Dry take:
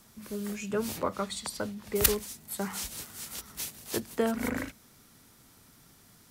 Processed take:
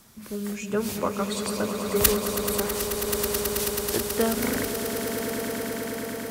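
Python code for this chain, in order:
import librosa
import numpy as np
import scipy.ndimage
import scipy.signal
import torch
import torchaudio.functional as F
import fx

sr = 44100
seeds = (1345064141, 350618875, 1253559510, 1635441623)

y = fx.echo_swell(x, sr, ms=108, loudest=8, wet_db=-10)
y = fx.tube_stage(y, sr, drive_db=22.0, bias=0.45, at=(2.6, 3.07))
y = y * 10.0 ** (3.5 / 20.0)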